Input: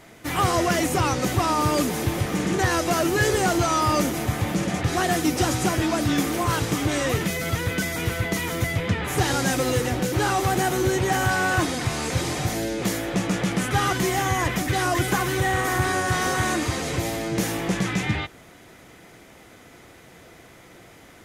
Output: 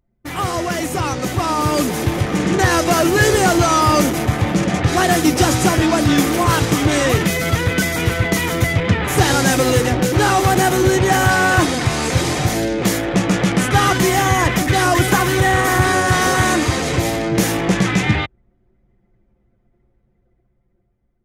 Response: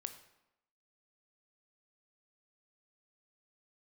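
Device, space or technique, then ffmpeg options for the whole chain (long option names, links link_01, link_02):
voice memo with heavy noise removal: -af "anlmdn=25.1,dynaudnorm=framelen=690:gausssize=5:maxgain=11.5dB"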